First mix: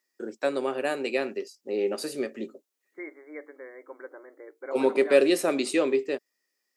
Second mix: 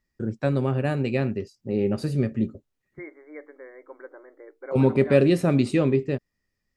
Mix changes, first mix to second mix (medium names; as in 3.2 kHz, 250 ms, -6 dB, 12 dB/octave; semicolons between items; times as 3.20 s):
first voice: remove high-pass 330 Hz 24 dB/octave; master: add treble shelf 4.9 kHz -11.5 dB